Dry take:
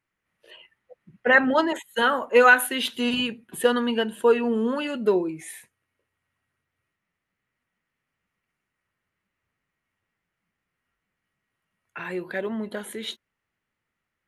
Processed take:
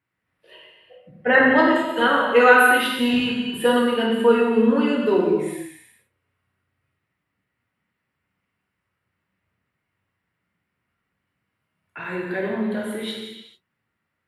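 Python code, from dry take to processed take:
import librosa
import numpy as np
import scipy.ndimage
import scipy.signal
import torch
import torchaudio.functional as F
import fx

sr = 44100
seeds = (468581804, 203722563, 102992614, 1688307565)

y = scipy.signal.sosfilt(scipy.signal.butter(2, 82.0, 'highpass', fs=sr, output='sos'), x)
y = fx.bass_treble(y, sr, bass_db=6, treble_db=-5)
y = fx.notch(y, sr, hz=6400.0, q=5.3)
y = fx.rev_gated(y, sr, seeds[0], gate_ms=470, shape='falling', drr_db=-3.5)
y = F.gain(torch.from_numpy(y), -1.0).numpy()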